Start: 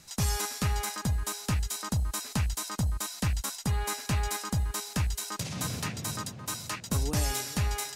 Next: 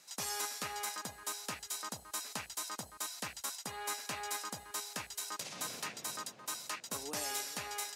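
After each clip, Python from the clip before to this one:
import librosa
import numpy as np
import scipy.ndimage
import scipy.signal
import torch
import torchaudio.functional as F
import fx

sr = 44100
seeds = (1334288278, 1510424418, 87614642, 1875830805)

y = scipy.signal.sosfilt(scipy.signal.butter(2, 410.0, 'highpass', fs=sr, output='sos'), x)
y = y * librosa.db_to_amplitude(-5.0)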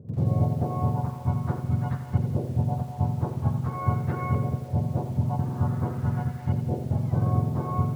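y = fx.octave_mirror(x, sr, pivot_hz=950.0)
y = fx.filter_lfo_lowpass(y, sr, shape='saw_up', hz=0.46, low_hz=490.0, high_hz=2000.0, q=2.1)
y = fx.echo_crushed(y, sr, ms=85, feedback_pct=55, bits=9, wet_db=-8.5)
y = y * librosa.db_to_amplitude(6.0)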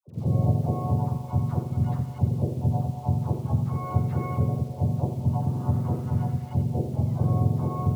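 y = fx.peak_eq(x, sr, hz=1600.0, db=-11.5, octaves=0.81)
y = fx.dispersion(y, sr, late='lows', ms=81.0, hz=820.0)
y = y * librosa.db_to_amplitude(1.0)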